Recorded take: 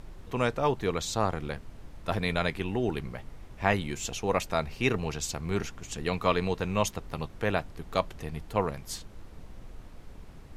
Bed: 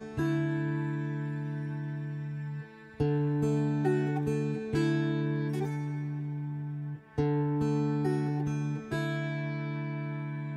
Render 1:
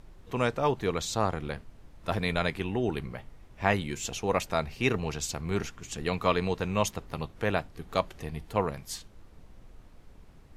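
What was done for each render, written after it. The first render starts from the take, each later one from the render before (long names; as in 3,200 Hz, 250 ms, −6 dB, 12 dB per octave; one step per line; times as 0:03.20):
noise reduction from a noise print 6 dB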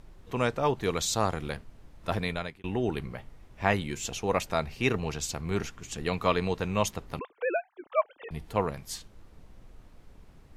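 0:00.83–0:01.57: high-shelf EQ 4,000 Hz +7.5 dB
0:02.17–0:02.64: fade out
0:07.19–0:08.31: three sine waves on the formant tracks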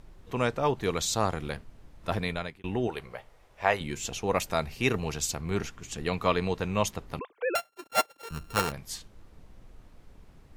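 0:02.87–0:03.81: low shelf with overshoot 370 Hz −9.5 dB, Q 1.5
0:04.35–0:05.35: high-shelf EQ 7,300 Hz +8 dB
0:07.55–0:08.72: samples sorted by size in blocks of 32 samples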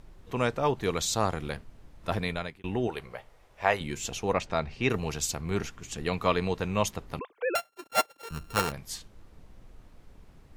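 0:04.33–0:04.90: high-frequency loss of the air 120 metres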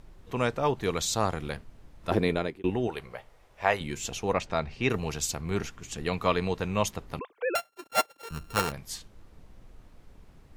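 0:02.11–0:02.70: parametric band 350 Hz +13.5 dB 1.3 octaves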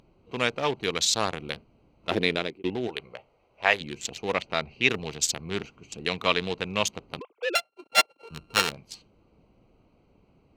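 adaptive Wiener filter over 25 samples
meter weighting curve D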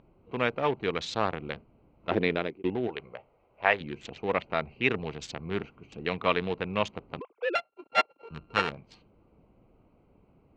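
low-pass filter 2,100 Hz 12 dB per octave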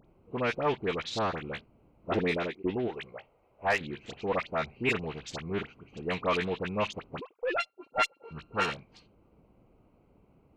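tube saturation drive 15 dB, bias 0.3
all-pass dispersion highs, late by 53 ms, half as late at 1,600 Hz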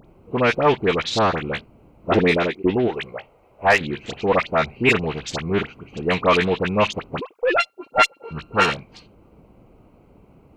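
level +11.5 dB
brickwall limiter −3 dBFS, peak gain reduction 1 dB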